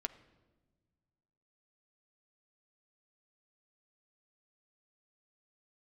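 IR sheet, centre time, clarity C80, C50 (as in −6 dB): 6 ms, 17.0 dB, 15.5 dB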